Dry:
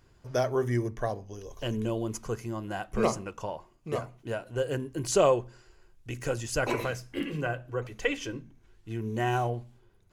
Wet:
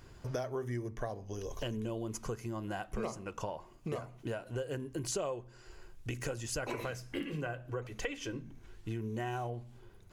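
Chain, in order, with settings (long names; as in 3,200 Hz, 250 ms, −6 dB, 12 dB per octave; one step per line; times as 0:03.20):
downward compressor 5 to 1, threshold −43 dBFS, peak gain reduction 21.5 dB
level +6.5 dB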